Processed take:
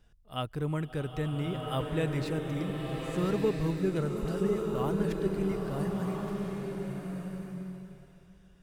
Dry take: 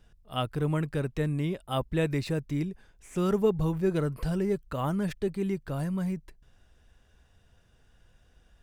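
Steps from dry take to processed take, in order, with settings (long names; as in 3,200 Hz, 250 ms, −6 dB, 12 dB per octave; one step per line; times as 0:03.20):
0:04.22–0:04.75: all-pass dispersion highs, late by 57 ms, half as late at 1,300 Hz
slow-attack reverb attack 1,390 ms, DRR 0.5 dB
level −4 dB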